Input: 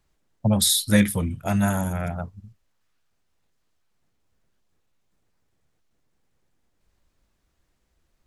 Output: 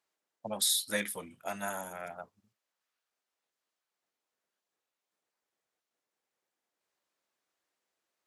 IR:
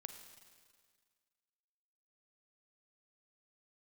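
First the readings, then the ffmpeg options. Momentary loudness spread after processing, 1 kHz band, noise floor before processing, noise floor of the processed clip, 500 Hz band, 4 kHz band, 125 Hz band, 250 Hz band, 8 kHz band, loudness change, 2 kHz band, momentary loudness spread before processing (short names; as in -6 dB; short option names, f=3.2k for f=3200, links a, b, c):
17 LU, -8.5 dB, -72 dBFS, under -85 dBFS, -10.0 dB, -8.0 dB, -28.5 dB, -22.0 dB, -8.0 dB, -11.0 dB, -8.0 dB, 13 LU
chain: -af "highpass=470,volume=-8dB"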